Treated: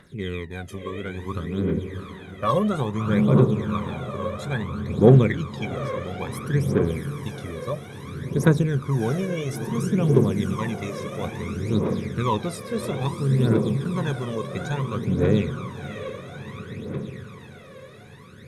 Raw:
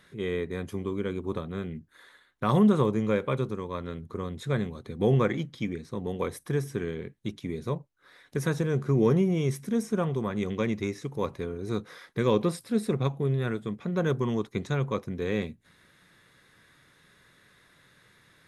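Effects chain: diffused feedback echo 0.649 s, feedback 65%, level -6 dB; phaser 0.59 Hz, delay 1.9 ms, feedback 73%

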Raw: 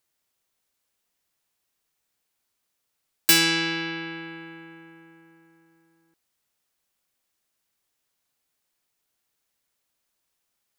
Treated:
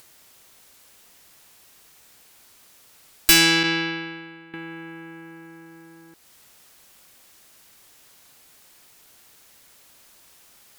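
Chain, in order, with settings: 3.63–4.54 expander -28 dBFS; in parallel at -2 dB: upward compressor, threshold -30 dBFS; on the sum: one-sided clip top -13.5 dBFS

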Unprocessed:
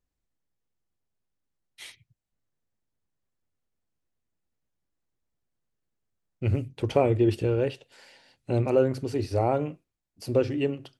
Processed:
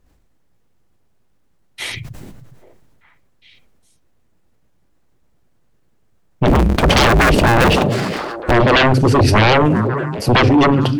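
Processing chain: 6.47–8.52 cycle switcher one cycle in 2, inverted; high shelf 2200 Hz -9 dB; sine folder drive 17 dB, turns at -10 dBFS; delay with a stepping band-pass 0.409 s, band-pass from 170 Hz, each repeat 1.4 oct, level -11 dB; sustainer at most 24 dB/s; gain +2 dB

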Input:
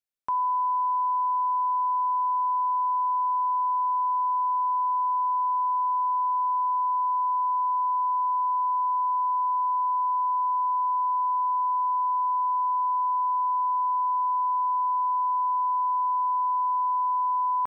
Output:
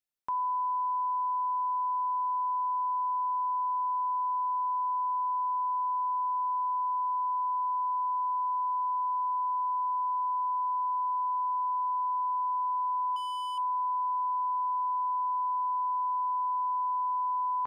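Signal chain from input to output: limiter -25.5 dBFS, peak gain reduction 3.5 dB; 13.16–13.58 overloaded stage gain 31.5 dB; resonator 900 Hz, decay 0.17 s, harmonics all, mix 50%; gain +4.5 dB

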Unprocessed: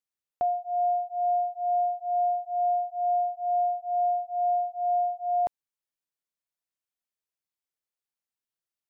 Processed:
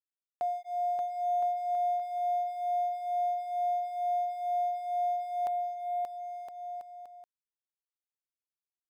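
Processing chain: tilt +3.5 dB/oct; crossover distortion -52.5 dBFS; on a send: bouncing-ball echo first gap 0.58 s, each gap 0.75×, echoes 5; on the sum: gain -3.5 dB

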